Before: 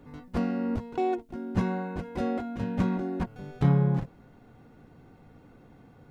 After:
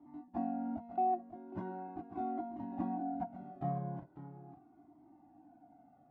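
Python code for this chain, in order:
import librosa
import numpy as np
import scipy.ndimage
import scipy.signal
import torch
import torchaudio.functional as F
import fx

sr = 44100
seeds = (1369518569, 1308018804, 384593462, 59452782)

p1 = fx.double_bandpass(x, sr, hz=470.0, octaves=1.2)
p2 = p1 + fx.echo_single(p1, sr, ms=546, db=-12.0, dry=0)
p3 = fx.comb_cascade(p2, sr, direction='falling', hz=0.4)
y = p3 * librosa.db_to_amplitude(5.5)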